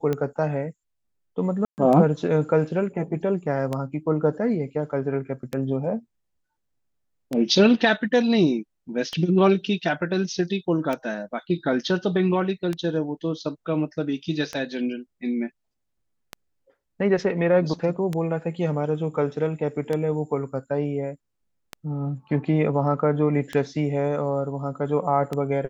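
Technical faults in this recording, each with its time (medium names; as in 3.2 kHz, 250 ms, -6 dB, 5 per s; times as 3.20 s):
tick 33 1/3 rpm -14 dBFS
1.65–1.78 s: dropout 129 ms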